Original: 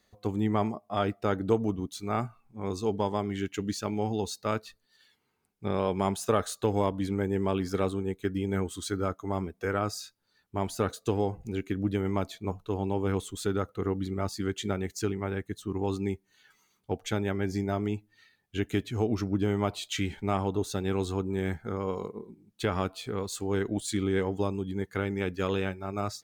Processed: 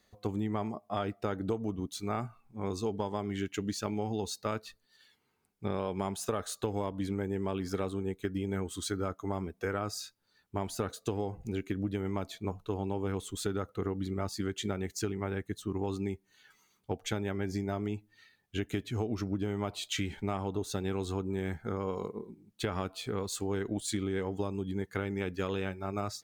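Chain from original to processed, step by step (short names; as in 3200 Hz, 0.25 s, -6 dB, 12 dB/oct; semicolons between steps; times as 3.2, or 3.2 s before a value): compressor, threshold -29 dBFS, peak gain reduction 10 dB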